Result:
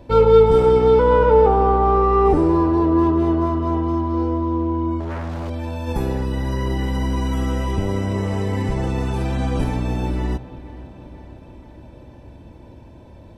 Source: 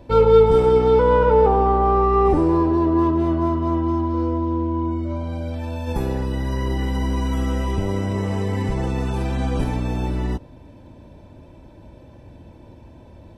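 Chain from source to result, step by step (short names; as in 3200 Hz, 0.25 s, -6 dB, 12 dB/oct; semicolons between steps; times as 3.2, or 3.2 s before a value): 5–5.5 self-modulated delay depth 0.82 ms; on a send: dark delay 0.483 s, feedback 63%, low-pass 3100 Hz, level -17 dB; on the sum: gain +1 dB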